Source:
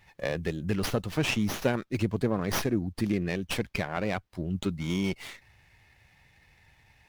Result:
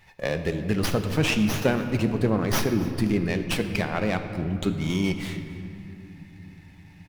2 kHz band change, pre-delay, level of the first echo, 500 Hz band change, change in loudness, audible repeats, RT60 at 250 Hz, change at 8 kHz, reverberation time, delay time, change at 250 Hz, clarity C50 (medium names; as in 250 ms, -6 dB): +4.5 dB, 4 ms, -20.5 dB, +4.5 dB, +4.5 dB, 1, 4.7 s, +4.0 dB, 2.9 s, 272 ms, +5.0 dB, 8.0 dB